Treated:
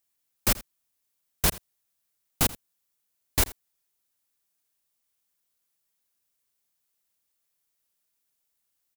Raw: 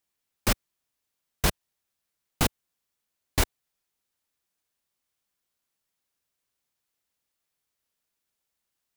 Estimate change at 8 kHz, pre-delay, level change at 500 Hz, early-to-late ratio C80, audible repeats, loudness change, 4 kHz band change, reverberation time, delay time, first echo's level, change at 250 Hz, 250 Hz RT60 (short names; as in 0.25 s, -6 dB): +3.5 dB, none, -2.0 dB, none, 1, +2.0 dB, +0.5 dB, none, 83 ms, -19.5 dB, -2.0 dB, none